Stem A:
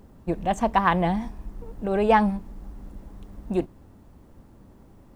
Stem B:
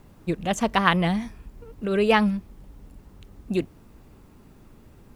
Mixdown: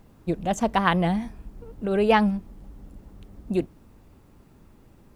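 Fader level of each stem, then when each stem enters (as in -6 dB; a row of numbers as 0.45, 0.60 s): -7.5, -4.0 dB; 0.00, 0.00 s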